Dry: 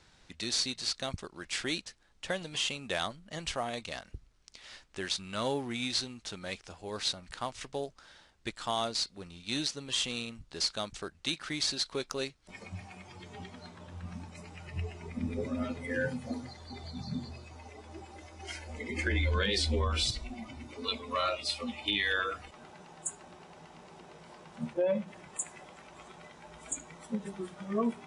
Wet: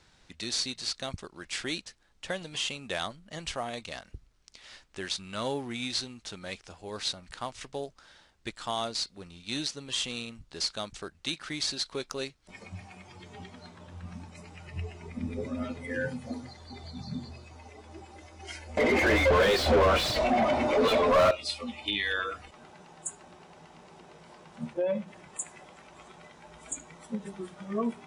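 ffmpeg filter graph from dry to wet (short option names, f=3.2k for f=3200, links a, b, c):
-filter_complex "[0:a]asettb=1/sr,asplit=3[a][b][c];[a]atrim=end=18.774[d];[b]atrim=start=18.77:end=21.31,asetpts=PTS-STARTPTS,afade=t=in:d=0.004:c=qsin,afade=t=out:st=2.536:d=0.004:c=qsin,equalizer=f=610:t=o:w=0.59:g=13,asplit=2[e][f];[f]highpass=f=720:p=1,volume=34dB,asoftclip=type=tanh:threshold=-13.5dB[g];[e][g]amix=inputs=2:normalize=0,lowpass=f=1.2k:p=1,volume=-6dB[h];[c]atrim=start=21.306[i];[d][h]acrossfade=d=0.004:c1=hsin:c2=qsin[j];[j][i]acrossfade=d=0.004:c1=qsin:c2=hsin"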